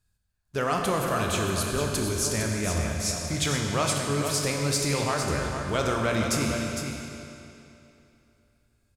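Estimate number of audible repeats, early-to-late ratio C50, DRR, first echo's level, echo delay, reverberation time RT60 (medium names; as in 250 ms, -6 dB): 1, 0.5 dB, -0.5 dB, -7.5 dB, 457 ms, 2.9 s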